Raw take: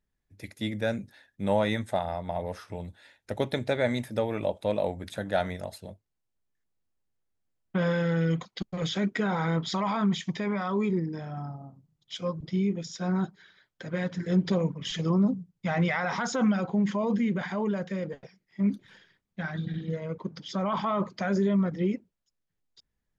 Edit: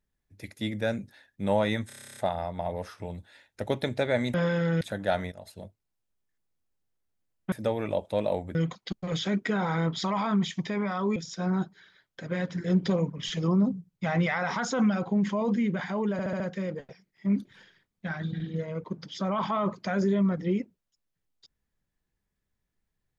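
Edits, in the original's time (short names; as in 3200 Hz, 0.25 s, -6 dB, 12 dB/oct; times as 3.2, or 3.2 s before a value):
1.87 stutter 0.03 s, 11 plays
4.04–5.07 swap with 7.78–8.25
5.58–5.88 fade in, from -16 dB
10.86–12.78 cut
17.74 stutter 0.07 s, 5 plays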